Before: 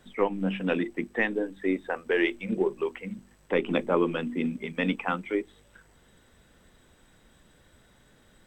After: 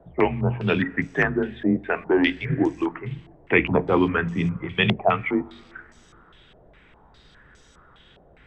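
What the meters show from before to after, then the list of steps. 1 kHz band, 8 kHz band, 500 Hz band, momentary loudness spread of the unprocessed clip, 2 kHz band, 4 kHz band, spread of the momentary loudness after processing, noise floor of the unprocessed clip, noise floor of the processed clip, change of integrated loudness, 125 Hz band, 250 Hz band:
+7.0 dB, can't be measured, +3.5 dB, 7 LU, +7.0 dB, +8.5 dB, 8 LU, −61 dBFS, −54 dBFS, +6.0 dB, +12.0 dB, +5.5 dB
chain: frequency shifter −71 Hz
coupled-rooms reverb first 0.25 s, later 2.5 s, from −16 dB, DRR 14.5 dB
low-pass on a step sequencer 4.9 Hz 670–6,100 Hz
level +4.5 dB

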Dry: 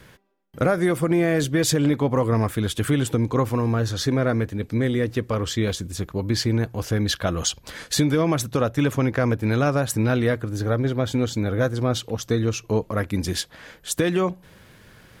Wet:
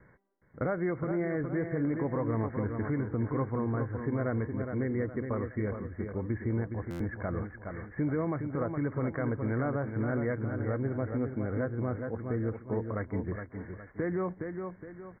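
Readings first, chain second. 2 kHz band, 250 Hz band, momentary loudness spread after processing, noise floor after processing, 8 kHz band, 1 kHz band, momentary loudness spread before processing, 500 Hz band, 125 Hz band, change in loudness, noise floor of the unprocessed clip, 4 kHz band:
−11.0 dB, −9.0 dB, 6 LU, −55 dBFS, below −40 dB, −10.0 dB, 6 LU, −9.5 dB, −9.5 dB, −10.0 dB, −52 dBFS, below −40 dB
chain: adaptive Wiener filter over 9 samples
on a send: repeating echo 415 ms, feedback 39%, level −7.5 dB
on the sum: brickwall limiter −13.5 dBFS, peak gain reduction 5.5 dB
Chebyshev low-pass filter 2,200 Hz, order 10
buffer that repeats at 0:06.90, samples 512, times 8
level −8.5 dB

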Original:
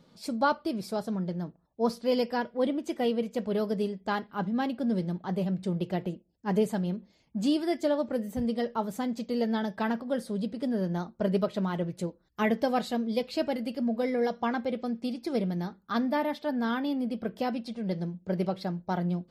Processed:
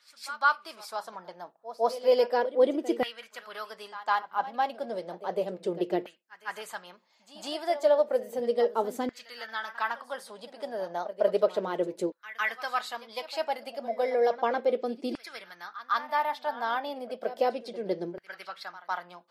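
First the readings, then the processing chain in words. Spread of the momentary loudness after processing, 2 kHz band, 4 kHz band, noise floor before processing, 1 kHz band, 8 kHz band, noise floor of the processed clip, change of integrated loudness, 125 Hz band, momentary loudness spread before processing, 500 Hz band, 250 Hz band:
16 LU, +4.5 dB, +1.0 dB, −66 dBFS, +3.5 dB, +0.5 dB, −63 dBFS, +0.5 dB, −17.5 dB, 6 LU, +2.5 dB, −10.0 dB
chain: echo ahead of the sound 155 ms −14.5 dB
auto-filter high-pass saw down 0.33 Hz 350–1,700 Hz

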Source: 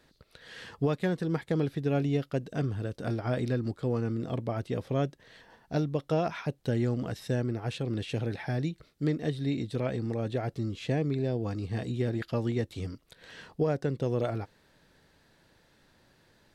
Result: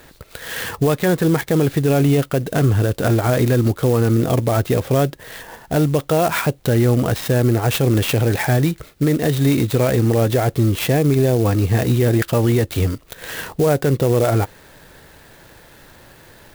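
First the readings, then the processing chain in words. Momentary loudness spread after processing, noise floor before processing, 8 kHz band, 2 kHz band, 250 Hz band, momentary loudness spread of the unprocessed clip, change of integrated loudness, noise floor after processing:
7 LU, −65 dBFS, +25.0 dB, +15.5 dB, +13.0 dB, 6 LU, +14.0 dB, −47 dBFS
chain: parametric band 210 Hz −5 dB 1.2 octaves
boost into a limiter +27 dB
converter with an unsteady clock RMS 0.043 ms
level −7.5 dB

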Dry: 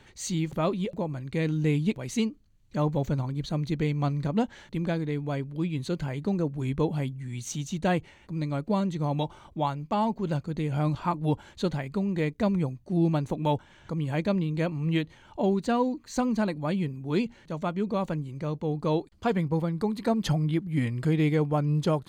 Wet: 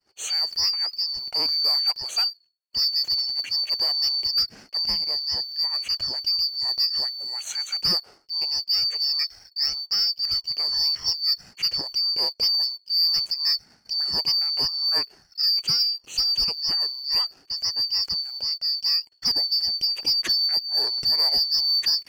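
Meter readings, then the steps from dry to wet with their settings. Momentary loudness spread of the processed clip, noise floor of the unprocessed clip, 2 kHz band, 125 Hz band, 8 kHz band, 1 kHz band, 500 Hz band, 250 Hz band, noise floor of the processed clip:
6 LU, −56 dBFS, −2.0 dB, below −20 dB, +7.0 dB, −9.5 dB, −16.0 dB, −23.0 dB, −61 dBFS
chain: band-splitting scrambler in four parts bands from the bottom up 2341
leveller curve on the samples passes 1
downward expander −44 dBFS

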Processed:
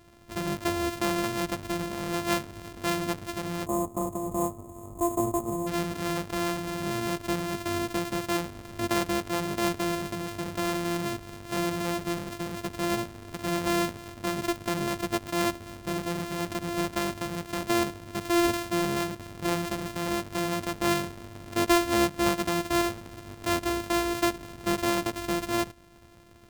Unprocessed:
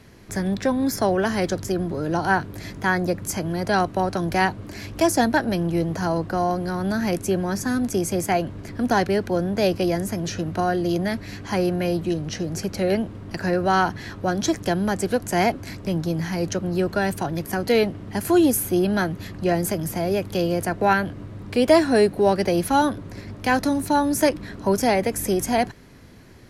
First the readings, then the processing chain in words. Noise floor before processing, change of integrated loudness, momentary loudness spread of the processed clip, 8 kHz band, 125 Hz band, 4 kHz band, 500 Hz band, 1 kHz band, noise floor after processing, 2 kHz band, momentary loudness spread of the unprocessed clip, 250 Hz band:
−39 dBFS, −6.5 dB, 8 LU, −4.5 dB, −8.5 dB, −1.5 dB, −8.5 dB, −7.0 dB, −46 dBFS, −6.0 dB, 8 LU, −6.5 dB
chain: samples sorted by size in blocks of 128 samples
gain on a spectral selection 0:03.66–0:05.67, 1,300–6,400 Hz −24 dB
level −7 dB

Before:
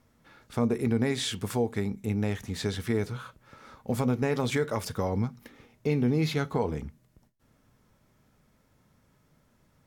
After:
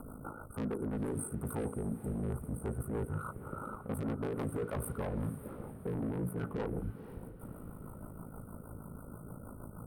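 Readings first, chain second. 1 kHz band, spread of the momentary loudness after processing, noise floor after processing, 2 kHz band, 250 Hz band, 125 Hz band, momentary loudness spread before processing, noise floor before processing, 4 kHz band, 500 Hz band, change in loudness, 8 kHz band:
−7.5 dB, 12 LU, −50 dBFS, −12.5 dB, −8.0 dB, −7.0 dB, 10 LU, −67 dBFS, −25.5 dB, −9.0 dB, −10.0 dB, −6.5 dB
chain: ring modulation 27 Hz
in parallel at 0 dB: upward compression, threshold −34 dBFS
on the sum: brick-wall band-stop 1,500–8,200 Hz
soft clipping −25.5 dBFS, distortion −7 dB
rotating-speaker cabinet horn 6.3 Hz
reversed playback
downward compressor, threshold −38 dBFS, peak gain reduction 10.5 dB
reversed playback
feedback delay with all-pass diffusion 495 ms, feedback 45%, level −13 dB
level +4 dB

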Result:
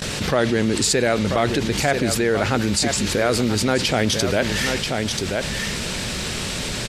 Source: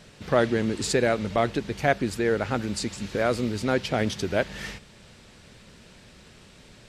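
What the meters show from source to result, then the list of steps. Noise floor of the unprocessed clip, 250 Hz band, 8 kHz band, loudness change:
−52 dBFS, +6.5 dB, +14.0 dB, +5.5 dB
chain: noise gate with hold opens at −42 dBFS
high-shelf EQ 3,300 Hz +7 dB
on a send: single-tap delay 985 ms −13 dB
on the sum: envelope flattener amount 70%

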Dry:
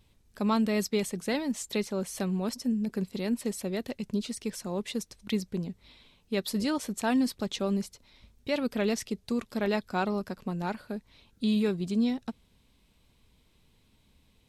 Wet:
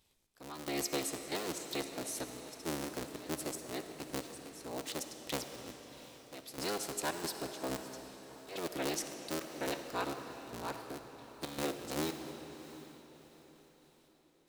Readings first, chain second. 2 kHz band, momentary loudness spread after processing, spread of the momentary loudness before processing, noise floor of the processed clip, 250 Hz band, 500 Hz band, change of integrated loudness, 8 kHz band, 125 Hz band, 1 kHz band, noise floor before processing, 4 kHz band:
−5.5 dB, 14 LU, 9 LU, −67 dBFS, −13.5 dB, −8.0 dB, −9.0 dB, −0.5 dB, −12.5 dB, −5.0 dB, −66 dBFS, −3.5 dB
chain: sub-harmonics by changed cycles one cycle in 3, inverted
gate pattern "xx...xxxx.xx.x." 114 BPM −12 dB
bass and treble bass −10 dB, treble +7 dB
on a send: feedback delay with all-pass diffusion 720 ms, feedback 41%, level −15.5 dB
on the sum: comb and all-pass reverb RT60 3.7 s, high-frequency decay 0.85×, pre-delay 20 ms, DRR 7 dB
level −7 dB

